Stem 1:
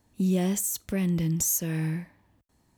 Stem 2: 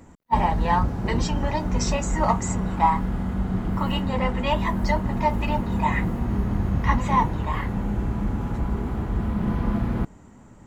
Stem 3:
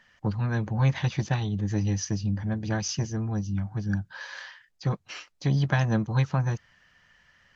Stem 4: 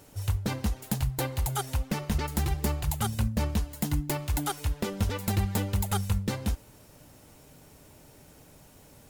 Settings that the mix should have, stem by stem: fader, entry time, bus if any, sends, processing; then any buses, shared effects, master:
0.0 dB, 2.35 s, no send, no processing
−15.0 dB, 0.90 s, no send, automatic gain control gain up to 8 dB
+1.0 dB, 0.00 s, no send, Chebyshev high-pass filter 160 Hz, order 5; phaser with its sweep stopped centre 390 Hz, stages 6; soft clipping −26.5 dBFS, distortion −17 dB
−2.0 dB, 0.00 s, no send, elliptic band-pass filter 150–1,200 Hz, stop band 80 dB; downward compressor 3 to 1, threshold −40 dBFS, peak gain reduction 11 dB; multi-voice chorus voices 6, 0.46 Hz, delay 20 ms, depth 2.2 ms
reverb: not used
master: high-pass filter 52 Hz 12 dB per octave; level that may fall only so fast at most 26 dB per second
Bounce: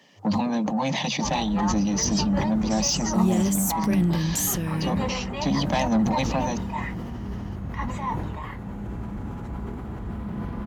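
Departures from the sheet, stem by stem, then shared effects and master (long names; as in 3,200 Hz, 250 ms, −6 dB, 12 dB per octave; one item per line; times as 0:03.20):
stem 1: entry 2.35 s → 2.95 s
stem 3 +1.0 dB → +10.0 dB
stem 4: missing downward compressor 3 to 1, threshold −40 dBFS, peak gain reduction 11 dB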